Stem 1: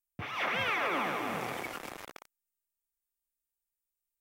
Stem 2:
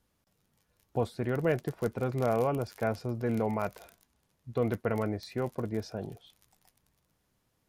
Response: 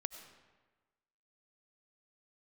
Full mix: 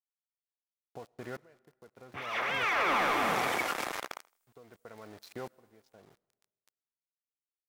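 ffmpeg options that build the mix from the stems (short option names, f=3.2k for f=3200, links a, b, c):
-filter_complex "[0:a]dynaudnorm=f=610:g=3:m=12dB,adelay=1950,volume=-7.5dB,asplit=2[a][b];[b]volume=-24dB[c];[1:a]acompressor=threshold=-32dB:ratio=16,aeval=exprs='val(0)*gte(abs(val(0)),0.00631)':c=same,aeval=exprs='val(0)*pow(10,-26*if(lt(mod(-0.73*n/s,1),2*abs(-0.73)/1000),1-mod(-0.73*n/s,1)/(2*abs(-0.73)/1000),(mod(-0.73*n/s,1)-2*abs(-0.73)/1000)/(1-2*abs(-0.73)/1000))/20)':c=same,volume=-5.5dB,asplit=2[d][e];[e]volume=-14.5dB[f];[2:a]atrim=start_sample=2205[g];[f][g]afir=irnorm=-1:irlink=0[h];[c]aecho=0:1:80|160|240|320:1|0.29|0.0841|0.0244[i];[a][d][h][i]amix=inputs=4:normalize=0,equalizer=f=2.8k:t=o:w=0.77:g=-2.5,asplit=2[j][k];[k]highpass=f=720:p=1,volume=12dB,asoftclip=type=tanh:threshold=-19.5dB[l];[j][l]amix=inputs=2:normalize=0,lowpass=f=7.3k:p=1,volume=-6dB"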